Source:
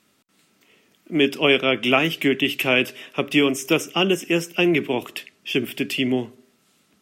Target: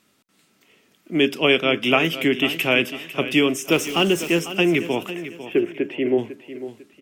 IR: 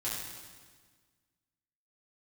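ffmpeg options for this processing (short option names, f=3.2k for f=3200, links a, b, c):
-filter_complex "[0:a]asettb=1/sr,asplit=3[a][b][c];[a]atrim=end=3.724[d];[b]atrim=start=3.72:end=4.39,asetpts=PTS-STARTPTS,afade=t=in:d=0.004:c=qsin,afade=t=out:st=0.666:d=0.004:c=qsin,aeval=exprs='val(0)+0.5*0.0282*sgn(val(0))':c=same[e];[c]atrim=start=4.386[f];[d][e]acrossfade=d=0.004:c1=hsin:c2=qsin[g];[g][f]acrossfade=d=0.004:c1=qsin:c2=hsin,asplit=3[h][i][j];[h]afade=t=out:st=5.11:d=0.02[k];[i]highpass=130,equalizer=f=140:t=q:w=4:g=-7,equalizer=f=230:t=q:w=4:g=-7,equalizer=f=360:t=q:w=4:g=9,equalizer=f=550:t=q:w=4:g=5,equalizer=f=1.2k:t=q:w=4:g=-4,lowpass=f=2.1k:w=0.5412,lowpass=f=2.1k:w=1.3066,afade=t=in:st=5.11:d=0.02,afade=t=out:st=6.17:d=0.02[l];[j]afade=t=in:st=6.17:d=0.02[m];[k][l][m]amix=inputs=3:normalize=0,aecho=1:1:499|998|1497:0.224|0.0784|0.0274"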